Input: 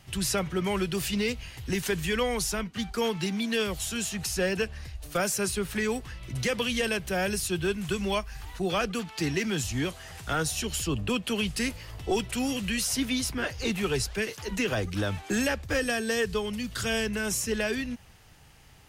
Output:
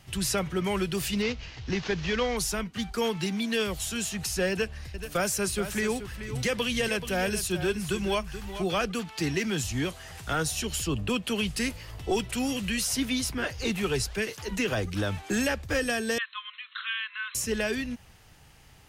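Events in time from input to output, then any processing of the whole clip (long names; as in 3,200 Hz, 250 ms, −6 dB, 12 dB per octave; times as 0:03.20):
0:01.22–0:02.37: variable-slope delta modulation 32 kbit/s
0:04.51–0:08.67: single-tap delay 430 ms −11 dB
0:16.18–0:17.35: linear-phase brick-wall band-pass 990–4,200 Hz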